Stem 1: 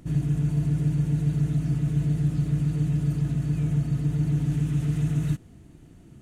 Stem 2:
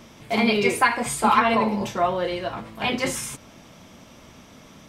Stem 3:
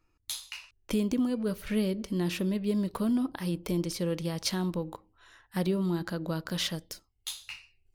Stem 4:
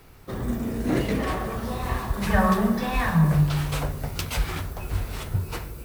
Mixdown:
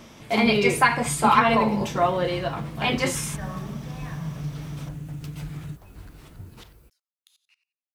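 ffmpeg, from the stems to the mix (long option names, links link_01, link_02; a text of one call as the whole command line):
ffmpeg -i stem1.wav -i stem2.wav -i stem3.wav -i stem4.wav -filter_complex "[0:a]acompressor=threshold=-32dB:ratio=6,adelay=400,volume=-1dB[link_01];[1:a]volume=0.5dB[link_02];[2:a]highpass=1200,aeval=exprs='val(0)*pow(10,-22*if(lt(mod(-11*n/s,1),2*abs(-11)/1000),1-mod(-11*n/s,1)/(2*abs(-11)/1000),(mod(-11*n/s,1)-2*abs(-11)/1000)/(1-2*abs(-11)/1000))/20)':channel_layout=same,volume=-15dB[link_03];[3:a]adelay=1050,volume=-16dB[link_04];[link_01][link_02][link_03][link_04]amix=inputs=4:normalize=0" out.wav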